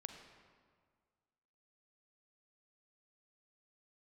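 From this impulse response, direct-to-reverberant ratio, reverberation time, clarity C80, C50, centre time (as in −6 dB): 5.0 dB, 1.8 s, 7.0 dB, 5.5 dB, 38 ms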